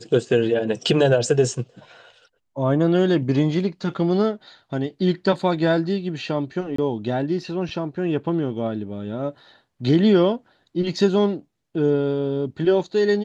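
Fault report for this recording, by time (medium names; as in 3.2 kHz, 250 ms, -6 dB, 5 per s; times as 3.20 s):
6.76–6.78 s: dropout 24 ms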